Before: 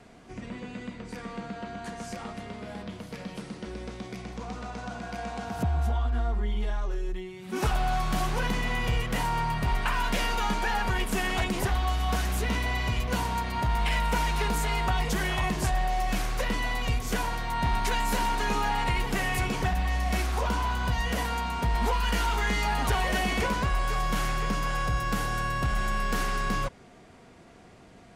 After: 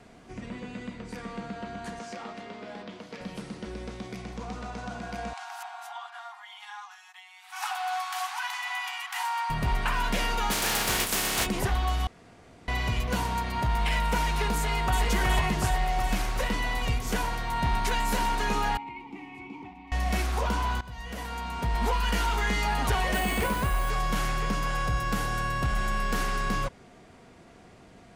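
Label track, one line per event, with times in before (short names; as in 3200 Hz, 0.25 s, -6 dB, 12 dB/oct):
1.990000	3.210000	three-band isolator lows -18 dB, under 200 Hz, highs -19 dB, over 7400 Hz
5.330000	9.500000	brick-wall FIR high-pass 710 Hz
10.500000	11.450000	spectral contrast lowered exponent 0.33
12.070000	12.680000	room tone
14.550000	15.030000	echo throw 0.37 s, feedback 70%, level -2.5 dB
18.770000	19.920000	vowel filter u
20.810000	21.910000	fade in, from -18.5 dB
23.140000	23.900000	careless resampling rate divided by 4×, down filtered, up hold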